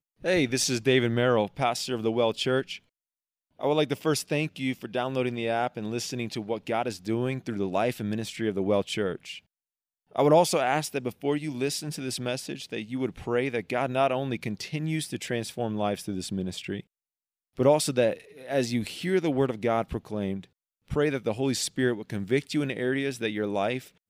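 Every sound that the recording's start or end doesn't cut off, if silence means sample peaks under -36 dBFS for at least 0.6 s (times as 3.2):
3.61–9.38
10.16–16.8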